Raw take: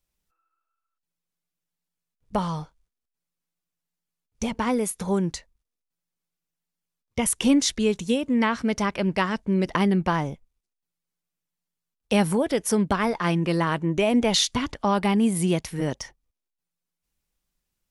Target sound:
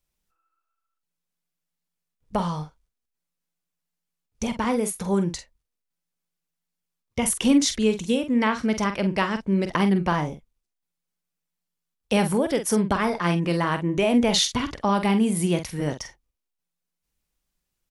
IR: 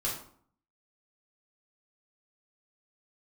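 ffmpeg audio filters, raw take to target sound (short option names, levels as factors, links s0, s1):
-filter_complex "[0:a]asplit=2[s0][s1];[s1]adelay=46,volume=0.355[s2];[s0][s2]amix=inputs=2:normalize=0"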